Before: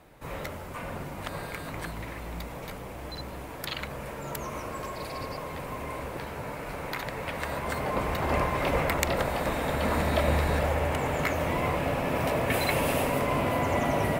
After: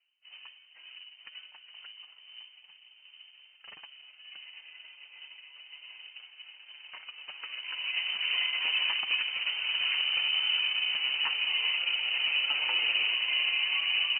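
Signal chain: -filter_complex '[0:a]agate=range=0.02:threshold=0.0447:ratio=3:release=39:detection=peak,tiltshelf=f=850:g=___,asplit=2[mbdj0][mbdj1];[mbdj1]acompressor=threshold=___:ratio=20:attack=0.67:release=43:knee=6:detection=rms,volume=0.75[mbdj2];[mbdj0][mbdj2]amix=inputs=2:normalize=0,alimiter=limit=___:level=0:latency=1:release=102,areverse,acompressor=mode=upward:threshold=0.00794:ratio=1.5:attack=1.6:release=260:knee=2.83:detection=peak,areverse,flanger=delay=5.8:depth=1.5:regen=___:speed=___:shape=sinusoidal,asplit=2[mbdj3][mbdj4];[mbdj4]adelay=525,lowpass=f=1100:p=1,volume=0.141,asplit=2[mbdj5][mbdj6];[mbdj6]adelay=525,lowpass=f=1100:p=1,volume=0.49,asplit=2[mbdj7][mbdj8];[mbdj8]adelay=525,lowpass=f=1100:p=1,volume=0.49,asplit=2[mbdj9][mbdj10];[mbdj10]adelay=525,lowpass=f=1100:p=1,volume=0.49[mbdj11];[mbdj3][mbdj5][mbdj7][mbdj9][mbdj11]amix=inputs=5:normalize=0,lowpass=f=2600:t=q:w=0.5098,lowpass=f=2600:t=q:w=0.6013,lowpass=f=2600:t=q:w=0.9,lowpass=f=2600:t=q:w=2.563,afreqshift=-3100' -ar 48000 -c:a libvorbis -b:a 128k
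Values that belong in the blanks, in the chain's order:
7, 0.0224, 0.168, 42, 0.59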